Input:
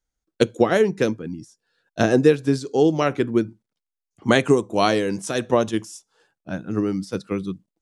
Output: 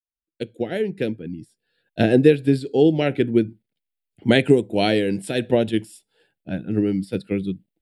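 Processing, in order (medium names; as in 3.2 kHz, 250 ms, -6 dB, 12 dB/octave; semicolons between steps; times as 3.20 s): fade-in on the opening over 1.82 s; static phaser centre 2.7 kHz, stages 4; trim +3 dB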